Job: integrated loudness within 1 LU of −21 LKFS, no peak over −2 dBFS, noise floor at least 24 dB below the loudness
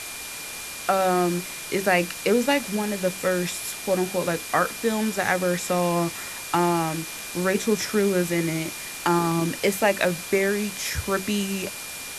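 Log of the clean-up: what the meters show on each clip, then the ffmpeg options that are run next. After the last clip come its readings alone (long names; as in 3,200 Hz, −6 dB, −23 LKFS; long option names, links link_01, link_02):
interfering tone 2,400 Hz; level of the tone −40 dBFS; background noise floor −36 dBFS; target noise floor −49 dBFS; integrated loudness −24.5 LKFS; sample peak −6.0 dBFS; target loudness −21.0 LKFS
→ -af "bandreject=frequency=2400:width=30"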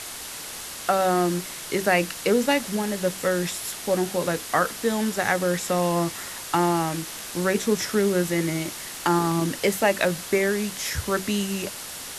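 interfering tone none found; background noise floor −37 dBFS; target noise floor −49 dBFS
→ -af "afftdn=noise_reduction=12:noise_floor=-37"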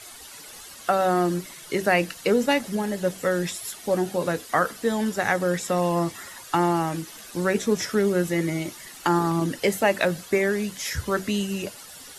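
background noise floor −44 dBFS; target noise floor −49 dBFS
→ -af "afftdn=noise_reduction=6:noise_floor=-44"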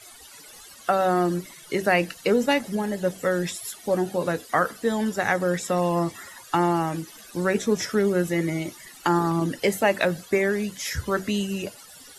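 background noise floor −47 dBFS; target noise floor −49 dBFS
→ -af "afftdn=noise_reduction=6:noise_floor=-47"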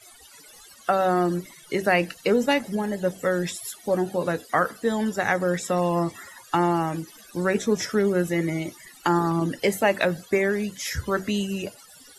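background noise floor −50 dBFS; integrated loudness −25.0 LKFS; sample peak −6.5 dBFS; target loudness −21.0 LKFS
→ -af "volume=4dB"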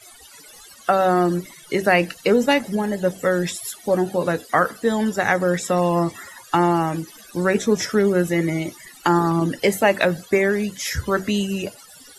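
integrated loudness −21.0 LKFS; sample peak −2.5 dBFS; background noise floor −46 dBFS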